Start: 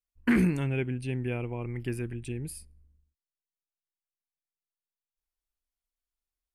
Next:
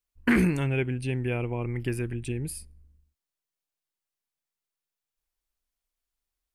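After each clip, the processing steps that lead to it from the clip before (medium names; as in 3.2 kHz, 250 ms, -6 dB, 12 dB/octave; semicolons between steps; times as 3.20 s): dynamic bell 210 Hz, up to -4 dB, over -35 dBFS, Q 1.1; trim +4.5 dB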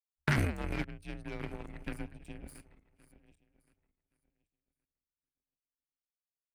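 backward echo that repeats 560 ms, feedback 59%, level -10 dB; power-law waveshaper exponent 2; frequency shift -93 Hz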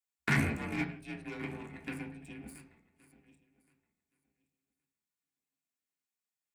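reverberation RT60 0.45 s, pre-delay 3 ms, DRR -1.5 dB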